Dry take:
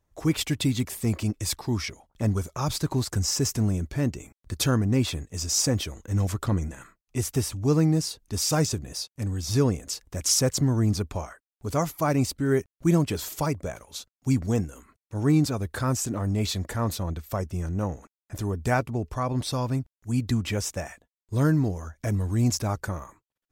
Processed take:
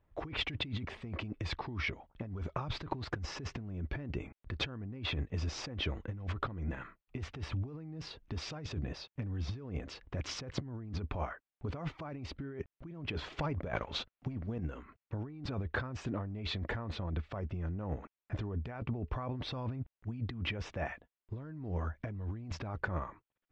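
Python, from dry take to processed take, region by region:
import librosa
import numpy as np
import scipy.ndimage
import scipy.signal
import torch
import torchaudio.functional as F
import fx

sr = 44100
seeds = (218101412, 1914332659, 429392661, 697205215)

y = fx.chain(x, sr, fx.leveller(passes=1),
    fx.over_compress(threshold_db=-28.0, ratio=-0.5), at=(13.39, 14.59))
y = scipy.signal.sosfilt(scipy.signal.butter(4, 3100.0, 'lowpass', fs=sr, output='sos'), y)
y = fx.over_compress(y, sr, threshold_db=-33.0, ratio=-1.0)
y = y * librosa.db_to_amplitude(-5.5)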